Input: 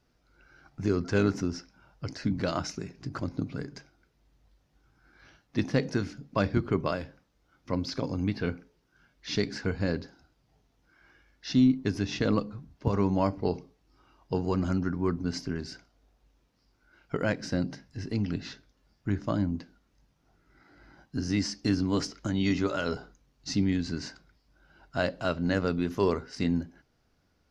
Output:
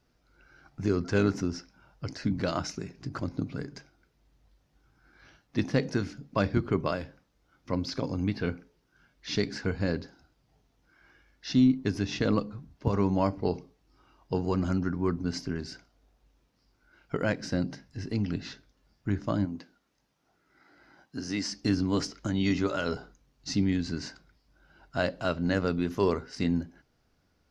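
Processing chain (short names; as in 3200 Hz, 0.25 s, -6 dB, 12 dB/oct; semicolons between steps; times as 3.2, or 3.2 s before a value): 19.45–21.52 HPF 330 Hz 6 dB/oct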